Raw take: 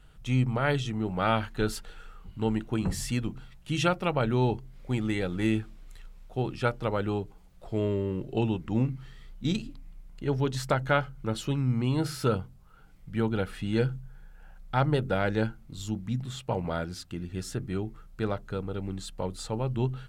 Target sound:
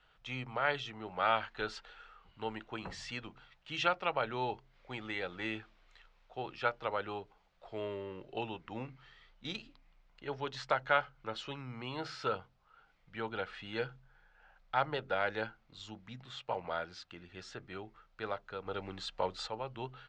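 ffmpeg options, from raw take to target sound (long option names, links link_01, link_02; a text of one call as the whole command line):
ffmpeg -i in.wav -filter_complex "[0:a]asplit=3[link_01][link_02][link_03];[link_01]afade=type=out:start_time=18.65:duration=0.02[link_04];[link_02]acontrast=59,afade=type=in:start_time=18.65:duration=0.02,afade=type=out:start_time=19.46:duration=0.02[link_05];[link_03]afade=type=in:start_time=19.46:duration=0.02[link_06];[link_04][link_05][link_06]amix=inputs=3:normalize=0,lowpass=frequency=7200:width=0.5412,lowpass=frequency=7200:width=1.3066,acrossover=split=520 4900:gain=0.126 1 0.126[link_07][link_08][link_09];[link_07][link_08][link_09]amix=inputs=3:normalize=0,volume=-2dB" out.wav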